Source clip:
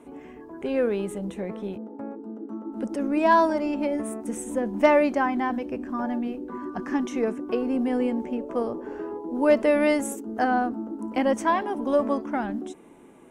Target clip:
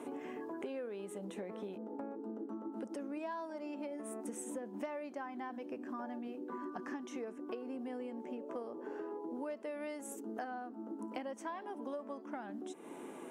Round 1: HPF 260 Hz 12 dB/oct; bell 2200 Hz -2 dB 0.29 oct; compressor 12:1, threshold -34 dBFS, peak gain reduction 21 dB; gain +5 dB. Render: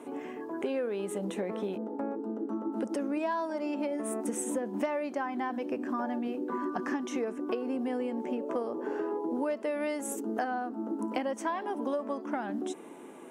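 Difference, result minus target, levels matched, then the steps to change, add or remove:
compressor: peak gain reduction -10 dB
change: compressor 12:1, threshold -45 dBFS, peak gain reduction 31 dB

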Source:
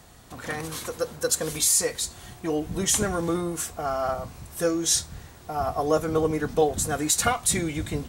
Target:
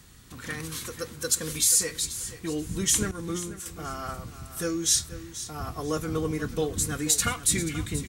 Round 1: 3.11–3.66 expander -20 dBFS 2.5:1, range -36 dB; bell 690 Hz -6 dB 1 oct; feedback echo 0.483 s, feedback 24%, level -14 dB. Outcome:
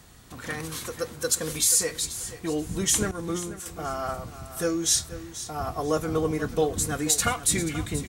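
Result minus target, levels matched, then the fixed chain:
500 Hz band +3.5 dB
3.11–3.66 expander -20 dBFS 2.5:1, range -36 dB; bell 690 Hz -15.5 dB 1 oct; feedback echo 0.483 s, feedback 24%, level -14 dB

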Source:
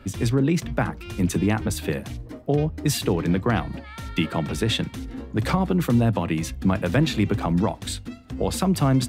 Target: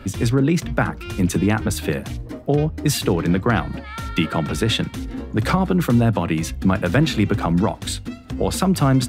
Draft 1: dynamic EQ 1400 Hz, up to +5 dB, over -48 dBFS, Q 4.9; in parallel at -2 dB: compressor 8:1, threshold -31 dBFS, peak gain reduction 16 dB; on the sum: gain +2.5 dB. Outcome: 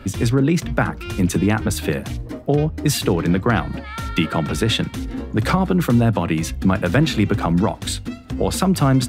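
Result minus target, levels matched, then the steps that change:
compressor: peak gain reduction -6.5 dB
change: compressor 8:1, threshold -38.5 dBFS, peak gain reduction 22.5 dB

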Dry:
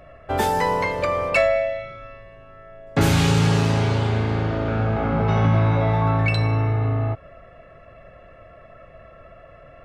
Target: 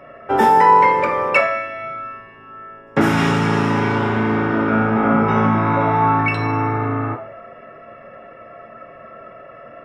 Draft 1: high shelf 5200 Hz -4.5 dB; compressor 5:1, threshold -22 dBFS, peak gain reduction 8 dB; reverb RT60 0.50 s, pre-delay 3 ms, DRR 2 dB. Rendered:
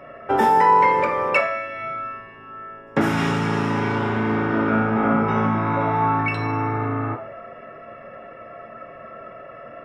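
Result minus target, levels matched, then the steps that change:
compressor: peak gain reduction +5 dB
change: compressor 5:1, threshold -16 dBFS, peak gain reduction 3.5 dB

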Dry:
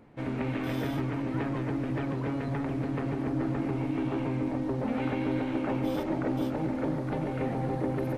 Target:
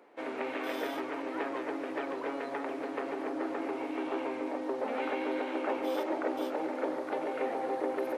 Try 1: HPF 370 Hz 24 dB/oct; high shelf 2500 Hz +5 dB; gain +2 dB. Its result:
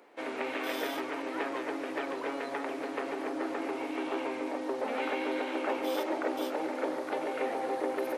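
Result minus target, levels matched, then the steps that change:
4000 Hz band +4.0 dB
change: high shelf 2500 Hz -2.5 dB

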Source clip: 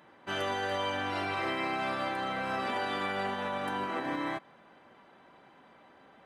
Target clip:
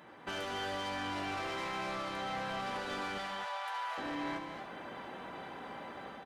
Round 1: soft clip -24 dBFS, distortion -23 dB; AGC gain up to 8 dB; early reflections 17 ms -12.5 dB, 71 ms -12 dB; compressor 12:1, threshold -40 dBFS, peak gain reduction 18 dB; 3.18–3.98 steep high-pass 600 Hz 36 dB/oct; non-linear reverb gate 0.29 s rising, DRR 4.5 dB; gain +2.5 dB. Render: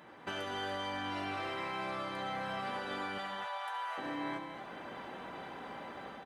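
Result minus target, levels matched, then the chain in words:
soft clip: distortion -13 dB
soft clip -34.5 dBFS, distortion -10 dB; AGC gain up to 8 dB; early reflections 17 ms -12.5 dB, 71 ms -12 dB; compressor 12:1, threshold -40 dBFS, peak gain reduction 13.5 dB; 3.18–3.98 steep high-pass 600 Hz 36 dB/oct; non-linear reverb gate 0.29 s rising, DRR 4.5 dB; gain +2.5 dB

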